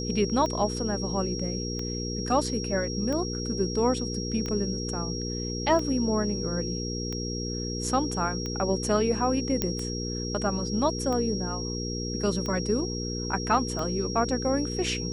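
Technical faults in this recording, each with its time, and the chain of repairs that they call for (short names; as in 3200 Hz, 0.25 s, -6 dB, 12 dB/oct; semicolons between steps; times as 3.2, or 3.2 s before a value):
hum 60 Hz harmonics 8 -33 dBFS
tick 45 rpm -20 dBFS
tone 5600 Hz -35 dBFS
9.62 pop -9 dBFS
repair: de-click; notch 5600 Hz, Q 30; de-hum 60 Hz, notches 8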